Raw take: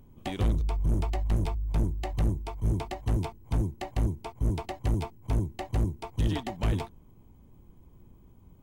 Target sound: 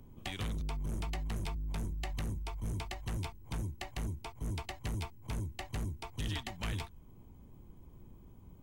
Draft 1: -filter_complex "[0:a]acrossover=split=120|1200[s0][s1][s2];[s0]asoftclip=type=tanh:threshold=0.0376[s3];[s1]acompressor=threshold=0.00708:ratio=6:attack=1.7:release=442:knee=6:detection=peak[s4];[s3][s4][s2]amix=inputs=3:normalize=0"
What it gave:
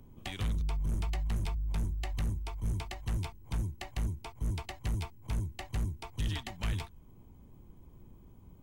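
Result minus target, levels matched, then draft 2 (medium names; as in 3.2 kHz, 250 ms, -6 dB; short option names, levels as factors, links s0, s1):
saturation: distortion -5 dB
-filter_complex "[0:a]acrossover=split=120|1200[s0][s1][s2];[s0]asoftclip=type=tanh:threshold=0.0168[s3];[s1]acompressor=threshold=0.00708:ratio=6:attack=1.7:release=442:knee=6:detection=peak[s4];[s3][s4][s2]amix=inputs=3:normalize=0"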